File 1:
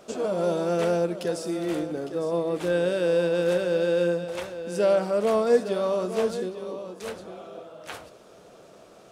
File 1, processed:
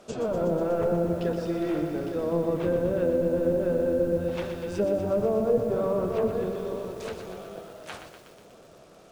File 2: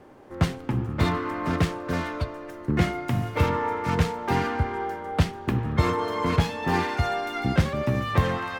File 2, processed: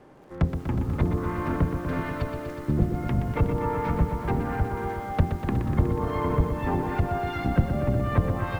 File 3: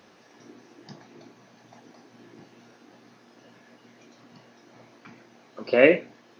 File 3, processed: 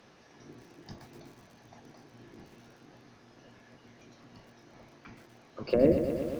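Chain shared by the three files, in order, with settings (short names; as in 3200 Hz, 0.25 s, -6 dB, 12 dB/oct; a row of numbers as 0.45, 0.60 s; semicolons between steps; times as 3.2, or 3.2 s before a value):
octaver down 1 oct, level -3 dB; treble ducked by the level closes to 470 Hz, closed at -18 dBFS; lo-fi delay 0.122 s, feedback 80%, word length 8-bit, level -8 dB; match loudness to -27 LUFS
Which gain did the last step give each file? -2.0, -2.0, -3.0 dB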